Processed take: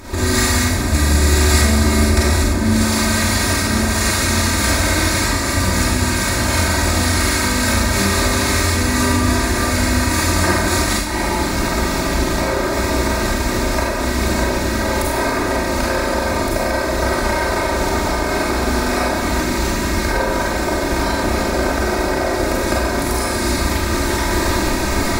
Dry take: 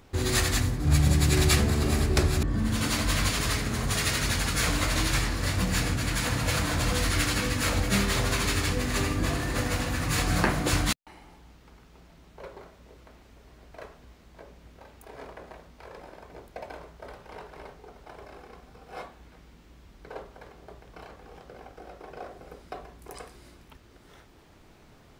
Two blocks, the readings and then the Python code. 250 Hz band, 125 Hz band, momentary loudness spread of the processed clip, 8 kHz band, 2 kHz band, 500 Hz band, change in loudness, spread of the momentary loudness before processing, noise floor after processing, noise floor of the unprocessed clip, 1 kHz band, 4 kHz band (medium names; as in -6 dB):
+13.5 dB, +9.0 dB, 4 LU, +12.5 dB, +13.0 dB, +15.5 dB, +8.5 dB, 21 LU, -20 dBFS, -55 dBFS, +15.5 dB, +10.5 dB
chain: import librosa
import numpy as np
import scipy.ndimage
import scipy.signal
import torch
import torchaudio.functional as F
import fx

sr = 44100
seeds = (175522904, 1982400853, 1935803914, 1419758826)

y = fx.bin_compress(x, sr, power=0.6)
y = fx.recorder_agc(y, sr, target_db=-14.5, rise_db_per_s=63.0, max_gain_db=30)
y = fx.peak_eq(y, sr, hz=3000.0, db=-11.0, octaves=0.32)
y = y + 0.71 * np.pad(y, (int(3.2 * sr / 1000.0), 0))[:len(y)]
y = fx.rev_schroeder(y, sr, rt60_s=0.83, comb_ms=32, drr_db=-5.0)
y = F.gain(torch.from_numpy(y), -1.0).numpy()